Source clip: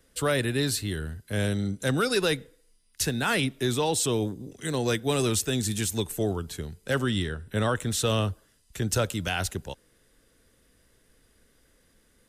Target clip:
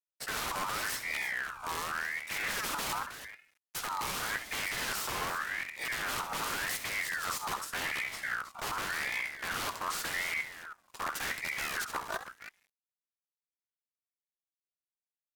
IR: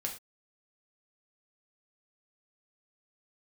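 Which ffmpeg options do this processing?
-filter_complex "[0:a]agate=range=0.0224:threshold=0.00316:ratio=3:detection=peak,highpass=f=190:p=1,adynamicequalizer=threshold=0.01:dfrequency=510:dqfactor=0.74:tfrequency=510:tqfactor=0.74:attack=5:release=100:ratio=0.375:range=3:mode=boostabove:tftype=bell,aeval=exprs='(mod(13.3*val(0)+1,2)-1)/13.3':c=same,lowshelf=f=270:g=10.5,acrusher=bits=7:dc=4:mix=0:aa=0.000001,areverse,acompressor=threshold=0.0178:ratio=6,areverse,asetrate=35280,aresample=44100,asplit=2[s0][s1];[s1]aecho=0:1:66|318:0.299|0.266[s2];[s0][s2]amix=inputs=2:normalize=0,aeval=exprs='val(0)*sin(2*PI*1600*n/s+1600*0.35/0.87*sin(2*PI*0.87*n/s))':c=same,volume=1.58"

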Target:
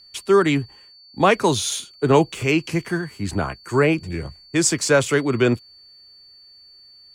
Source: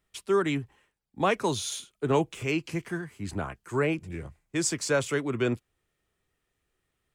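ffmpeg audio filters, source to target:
-af "aeval=exprs='val(0)+0.00178*sin(2*PI*4500*n/s)':c=same,volume=2.82"

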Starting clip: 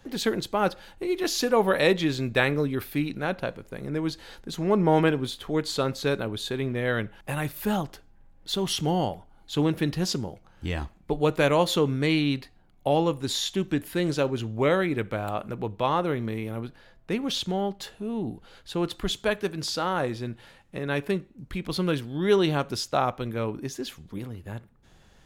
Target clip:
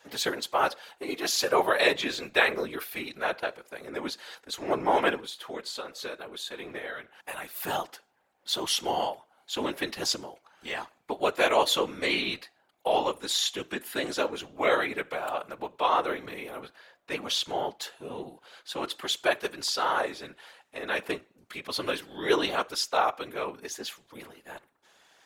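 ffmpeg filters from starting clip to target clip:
-filter_complex "[0:a]highpass=590,asplit=3[s0][s1][s2];[s0]afade=t=out:st=5.2:d=0.02[s3];[s1]acompressor=threshold=0.0158:ratio=6,afade=t=in:st=5.2:d=0.02,afade=t=out:st=7.52:d=0.02[s4];[s2]afade=t=in:st=7.52:d=0.02[s5];[s3][s4][s5]amix=inputs=3:normalize=0,afftfilt=real='hypot(re,im)*cos(2*PI*random(0))':imag='hypot(re,im)*sin(2*PI*random(1))':win_size=512:overlap=0.75,volume=2.51"

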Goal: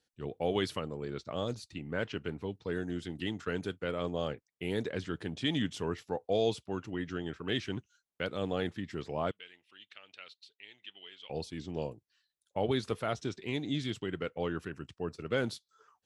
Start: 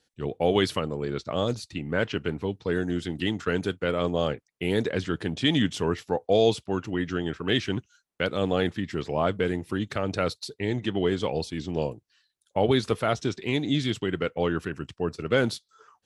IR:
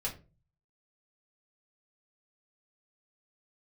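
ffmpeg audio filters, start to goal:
-filter_complex "[0:a]asettb=1/sr,asplit=3[s0][s1][s2];[s0]atrim=end=9.314[s3];[s1]atrim=start=9.31:end=11.3,asetpts=PTS-STARTPTS,afade=t=in:d=0.004:c=qsin,afade=t=out:st=1.986:d=0.004:c=qsin,bandpass=f=2900:t=q:w=3.3:csg=0[s4];[s2]atrim=start=11.296[s5];[s3][s4]acrossfade=d=0.004:c1=hsin:c2=qsin[s6];[s6][s5]acrossfade=d=0.004:c1=qsin:c2=hsin,volume=0.376"

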